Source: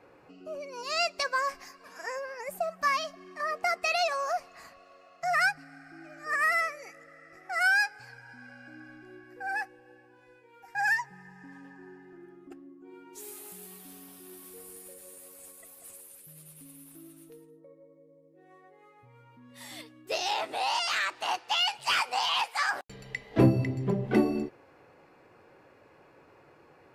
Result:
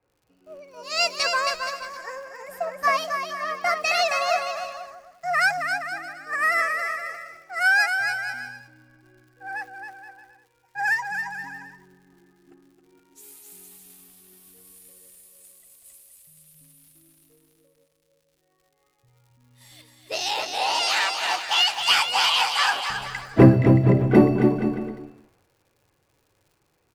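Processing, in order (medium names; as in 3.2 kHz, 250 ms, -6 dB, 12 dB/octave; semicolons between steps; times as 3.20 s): crackle 81 per s -40 dBFS; bouncing-ball echo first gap 270 ms, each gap 0.75×, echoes 5; three bands expanded up and down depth 70%; trim +2.5 dB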